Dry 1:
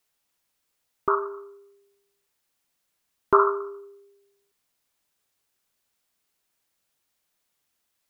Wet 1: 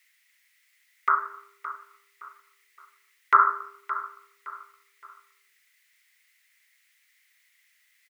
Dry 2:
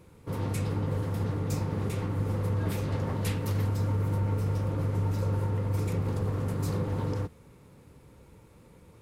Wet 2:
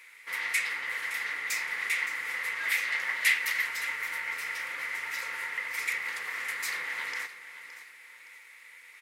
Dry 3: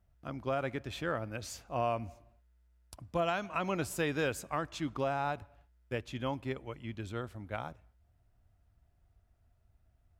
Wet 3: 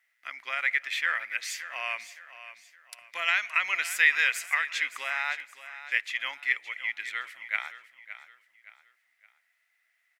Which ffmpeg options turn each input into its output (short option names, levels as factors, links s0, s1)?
-af "highpass=f=2000:t=q:w=8.4,aecho=1:1:567|1134|1701:0.211|0.0761|0.0274,volume=2.24"